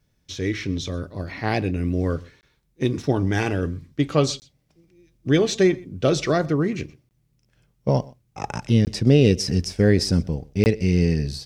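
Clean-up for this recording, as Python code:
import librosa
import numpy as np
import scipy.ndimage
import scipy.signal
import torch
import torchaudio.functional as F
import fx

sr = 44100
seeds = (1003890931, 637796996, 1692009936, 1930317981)

y = fx.fix_interpolate(x, sr, at_s=(2.41, 4.4, 7.09, 8.85, 10.64), length_ms=19.0)
y = fx.fix_echo_inverse(y, sr, delay_ms=124, level_db=-23.5)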